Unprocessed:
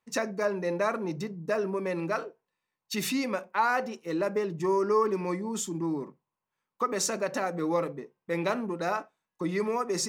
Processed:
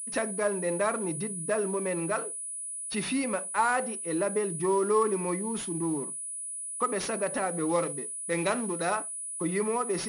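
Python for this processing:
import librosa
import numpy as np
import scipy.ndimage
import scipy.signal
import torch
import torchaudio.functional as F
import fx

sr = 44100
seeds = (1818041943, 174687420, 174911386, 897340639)

y = fx.cvsd(x, sr, bps=64000)
y = fx.high_shelf(y, sr, hz=3300.0, db=9.5, at=(7.69, 8.95))
y = fx.pwm(y, sr, carrier_hz=9900.0)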